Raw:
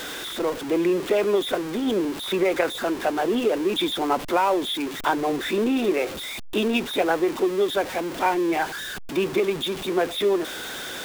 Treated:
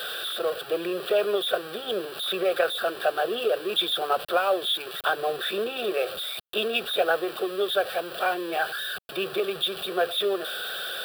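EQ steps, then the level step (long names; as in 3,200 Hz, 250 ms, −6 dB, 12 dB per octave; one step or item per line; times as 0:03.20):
high-pass filter 470 Hz 6 dB per octave
phaser with its sweep stopped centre 1,400 Hz, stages 8
notch filter 5,400 Hz, Q 12
+3.0 dB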